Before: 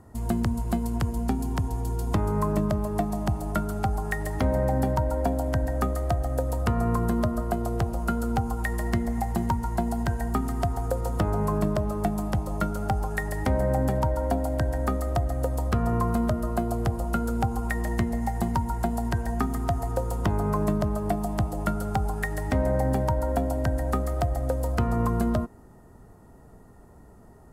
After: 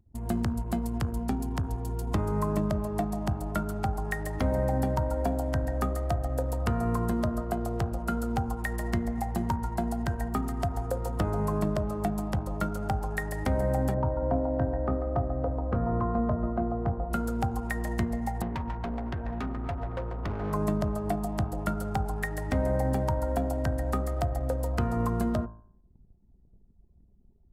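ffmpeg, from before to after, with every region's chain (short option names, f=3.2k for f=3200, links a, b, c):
-filter_complex "[0:a]asettb=1/sr,asplit=3[a][b][c];[a]atrim=end=13.944[d];[b]atrim=start=13.94:end=17.11,asetpts=PTS-STARTPTS,afade=t=in:d=0.004:c=qsin,afade=t=out:st=3.166:d=0.004:c=qsin,lowpass=1.2k,asplit=2[e][f];[f]adelay=23,volume=-11dB[g];[e][g]amix=inputs=2:normalize=0,atrim=end_sample=139797,aecho=1:1:279:0.355,atrim=end_sample=139797[h];[c]atrim=start=17.106[i];[d][h]acrossfade=d=0.004:c1=hsin:c2=qsin[j];[j][i]acrossfade=d=0.004:c1=qsin:c2=hsin,asettb=1/sr,asplit=3[k][l][m];[k]atrim=end=18.424[n];[l]atrim=start=18.42:end=20.53,asetpts=PTS-STARTPTS,afade=t=in:d=0.004:c=qsin,afade=t=out:st=2.106:d=0.004:c=qsin,lowpass=2.6k,asoftclip=type=hard:threshold=-26dB[o];[m]atrim=start=20.526[p];[n][o]acrossfade=d=0.004:c1=hsin:c2=qsin[q];[q][p]acrossfade=d=0.004:c1=qsin:c2=hsin,anlmdn=0.251,bandreject=f=55.27:t=h:w=4,bandreject=f=110.54:t=h:w=4,bandreject=f=165.81:t=h:w=4,bandreject=f=221.08:t=h:w=4,bandreject=f=276.35:t=h:w=4,bandreject=f=331.62:t=h:w=4,bandreject=f=386.89:t=h:w=4,bandreject=f=442.16:t=h:w=4,bandreject=f=497.43:t=h:w=4,bandreject=f=552.7:t=h:w=4,bandreject=f=607.97:t=h:w=4,bandreject=f=663.24:t=h:w=4,bandreject=f=718.51:t=h:w=4,bandreject=f=773.78:t=h:w=4,bandreject=f=829.05:t=h:w=4,bandreject=f=884.32:t=h:w=4,bandreject=f=939.59:t=h:w=4,bandreject=f=994.86:t=h:w=4,bandreject=f=1.05013k:t=h:w=4,bandreject=f=1.1054k:t=h:w=4,bandreject=f=1.16067k:t=h:w=4,bandreject=f=1.21594k:t=h:w=4,bandreject=f=1.27121k:t=h:w=4,bandreject=f=1.32648k:t=h:w=4,bandreject=f=1.38175k:t=h:w=4,bandreject=f=1.43702k:t=h:w=4,bandreject=f=1.49229k:t=h:w=4,bandreject=f=1.54756k:t=h:w=4,bandreject=f=1.60283k:t=h:w=4,bandreject=f=1.6581k:t=h:w=4,volume=-2.5dB"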